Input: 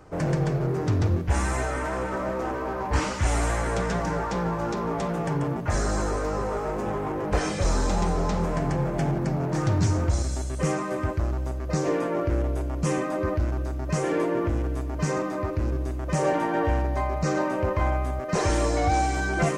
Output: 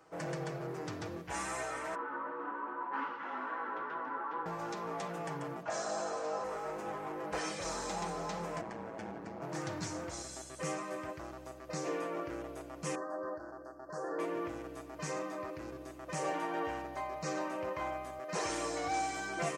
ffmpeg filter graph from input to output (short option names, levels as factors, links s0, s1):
-filter_complex "[0:a]asettb=1/sr,asplit=3[s0][s1][s2];[s0]atrim=end=1.954[s3];[s1]atrim=start=1.95:end=4.46,asetpts=PTS-STARTPTS,afade=t=in:d=0.004:c=qsin,afade=t=out:st=2.506:d=0.004:c=qsin,flanger=delay=5.8:depth=8.2:regen=-61:speed=1.2:shape=triangular,afreqshift=-34,highpass=f=230:w=0.5412,highpass=f=230:w=1.3066,equalizer=f=260:t=q:w=4:g=10,equalizer=f=660:t=q:w=4:g=-7,equalizer=f=980:t=q:w=4:g=9,equalizer=f=1400:t=q:w=4:g=7,equalizer=f=2300:t=q:w=4:g=-7,lowpass=f=2700:w=0.5412,lowpass=f=2700:w=1.3066[s4];[s2]atrim=start=4.456[s5];[s3][s4]acrossfade=d=0.004:c1=hsin:c2=qsin[s6];[s6][s5]acrossfade=d=0.004:c1=qsin:c2=hsin,asettb=1/sr,asplit=3[s7][s8][s9];[s7]atrim=end=5.634[s10];[s8]atrim=start=5.63:end=6.44,asetpts=PTS-STARTPTS,afade=t=in:d=0.004:c=qsin,afade=t=out:st=0.806:d=0.004:c=qsin,highpass=170,equalizer=f=360:t=q:w=4:g=-4,equalizer=f=680:t=q:w=4:g=8,equalizer=f=2000:t=q:w=4:g=-7,lowpass=f=7700:w=0.5412,lowpass=f=7700:w=1.3066,asplit=2[s11][s12];[s12]adelay=50,volume=0.299[s13];[s11][s13]amix=inputs=2:normalize=0,atrim=end_sample=35721[s14];[s9]atrim=start=6.436[s15];[s10][s14]acrossfade=d=0.004:c1=hsin:c2=qsin[s16];[s16][s15]acrossfade=d=0.004:c1=qsin:c2=hsin,asettb=1/sr,asplit=3[s17][s18][s19];[s17]atrim=end=8.614[s20];[s18]atrim=start=8.61:end=9.42,asetpts=PTS-STARTPTS,afade=t=in:d=0.004:c=qsin,afade=t=out:st=0.806:d=0.004:c=qsin,lowpass=f=3100:p=1,aeval=exprs='val(0)*sin(2*PI*57*n/s)':c=same[s21];[s19]atrim=start=9.416[s22];[s20][s21]acrossfade=d=0.004:c1=hsin:c2=qsin[s23];[s23][s22]acrossfade=d=0.004:c1=qsin:c2=hsin,asettb=1/sr,asplit=3[s24][s25][s26];[s24]atrim=end=12.954[s27];[s25]atrim=start=12.95:end=14.19,asetpts=PTS-STARTPTS,afade=t=in:d=0.004:c=qsin,afade=t=out:st=1.236:d=0.004:c=qsin,asuperstop=centerf=2800:order=20:qfactor=1.1,bass=f=250:g=-11,treble=f=4000:g=-15[s28];[s26]atrim=start=14.186[s29];[s27][s28]acrossfade=d=0.004:c1=hsin:c2=qsin[s30];[s30][s29]acrossfade=d=0.004:c1=qsin:c2=hsin,highpass=f=650:p=1,aecho=1:1:6.1:0.41,volume=0.422"